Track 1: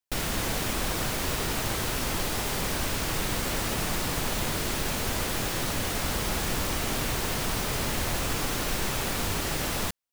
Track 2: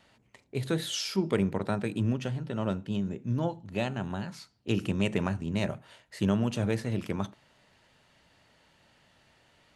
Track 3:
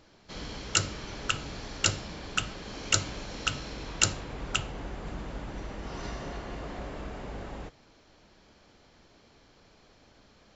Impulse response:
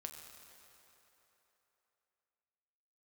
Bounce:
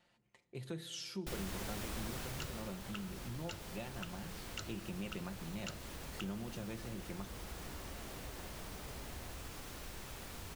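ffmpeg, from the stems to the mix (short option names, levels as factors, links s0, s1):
-filter_complex "[0:a]equalizer=f=64:t=o:w=0.76:g=7.5,adelay=1150,volume=0.376,afade=t=out:st=2.08:d=0.7:silence=0.298538[s0];[1:a]aecho=1:1:5.7:0.53,volume=0.2,asplit=2[s1][s2];[s2]volume=0.596[s3];[2:a]lowpass=4700,adelay=1650,volume=0.2[s4];[3:a]atrim=start_sample=2205[s5];[s3][s5]afir=irnorm=-1:irlink=0[s6];[s0][s1][s4][s6]amix=inputs=4:normalize=0,acompressor=threshold=0.00708:ratio=2"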